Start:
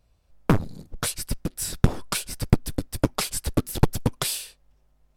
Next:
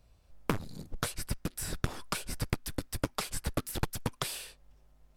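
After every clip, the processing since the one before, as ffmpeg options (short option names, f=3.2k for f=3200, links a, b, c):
-filter_complex "[0:a]acrossover=split=1000|2200[a][b][c];[a]acompressor=threshold=-33dB:ratio=4[d];[b]acompressor=threshold=-40dB:ratio=4[e];[c]acompressor=threshold=-41dB:ratio=4[f];[d][e][f]amix=inputs=3:normalize=0,volume=1.5dB"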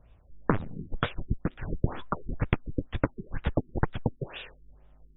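-af "afftfilt=real='re*lt(b*sr/1024,410*pow(3900/410,0.5+0.5*sin(2*PI*2.1*pts/sr)))':imag='im*lt(b*sr/1024,410*pow(3900/410,0.5+0.5*sin(2*PI*2.1*pts/sr)))':win_size=1024:overlap=0.75,volume=6dB"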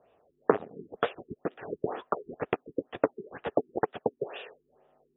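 -af "highpass=400,equalizer=f=430:t=q:w=4:g=8,equalizer=f=710:t=q:w=4:g=5,equalizer=f=1k:t=q:w=4:g=-4,equalizer=f=1.5k:t=q:w=4:g=-5,equalizer=f=2.2k:t=q:w=4:g=-8,lowpass=f=2.8k:w=0.5412,lowpass=f=2.8k:w=1.3066,volume=3.5dB"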